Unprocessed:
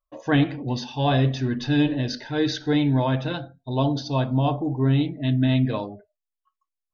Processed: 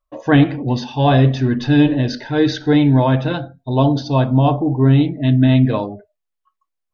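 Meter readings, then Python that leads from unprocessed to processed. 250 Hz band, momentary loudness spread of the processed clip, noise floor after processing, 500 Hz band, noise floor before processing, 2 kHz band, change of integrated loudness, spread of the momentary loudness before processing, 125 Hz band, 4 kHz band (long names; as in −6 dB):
+8.0 dB, 8 LU, −78 dBFS, +8.0 dB, below −85 dBFS, +6.0 dB, +7.5 dB, 8 LU, +8.0 dB, +3.5 dB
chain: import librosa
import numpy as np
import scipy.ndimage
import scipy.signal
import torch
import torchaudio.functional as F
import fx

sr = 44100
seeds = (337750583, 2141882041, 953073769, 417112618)

y = fx.high_shelf(x, sr, hz=3200.0, db=-8.0)
y = y * 10.0 ** (8.0 / 20.0)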